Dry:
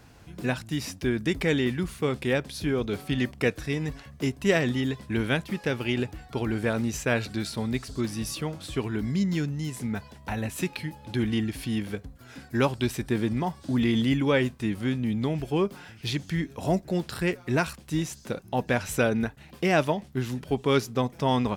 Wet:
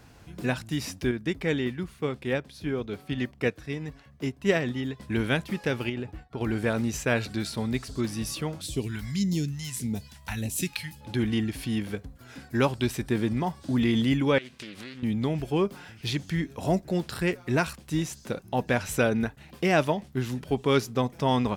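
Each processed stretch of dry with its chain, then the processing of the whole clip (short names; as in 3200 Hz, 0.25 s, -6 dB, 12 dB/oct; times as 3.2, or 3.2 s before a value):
1.11–5 HPF 46 Hz + bell 9800 Hz -5 dB 1.8 oct + upward expander, over -33 dBFS
5.89–6.41 expander -40 dBFS + high shelf 3500 Hz -10 dB + compressor 4:1, threshold -29 dBFS
8.61–11.01 phaser stages 2, 1.7 Hz, lowest notch 310–1500 Hz + high shelf 4600 Hz +8 dB
14.38–15.03 weighting filter D + compressor 8:1, threshold -37 dBFS + Doppler distortion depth 0.44 ms
whole clip: dry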